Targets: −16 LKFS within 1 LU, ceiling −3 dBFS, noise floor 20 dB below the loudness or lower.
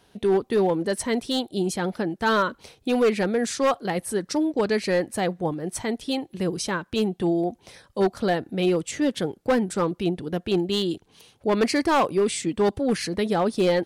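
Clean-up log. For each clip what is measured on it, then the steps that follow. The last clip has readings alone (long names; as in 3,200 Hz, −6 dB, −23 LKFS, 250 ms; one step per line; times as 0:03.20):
share of clipped samples 1.6%; peaks flattened at −15.0 dBFS; integrated loudness −24.5 LKFS; sample peak −15.0 dBFS; target loudness −16.0 LKFS
→ clipped peaks rebuilt −15 dBFS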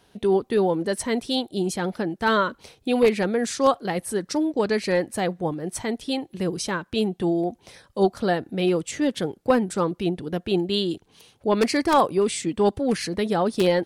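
share of clipped samples 0.0%; integrated loudness −24.0 LKFS; sample peak −6.0 dBFS; target loudness −16.0 LKFS
→ level +8 dB
brickwall limiter −3 dBFS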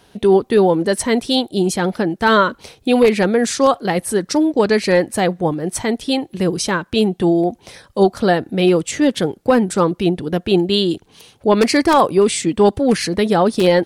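integrated loudness −16.5 LKFS; sample peak −3.0 dBFS; background noise floor −54 dBFS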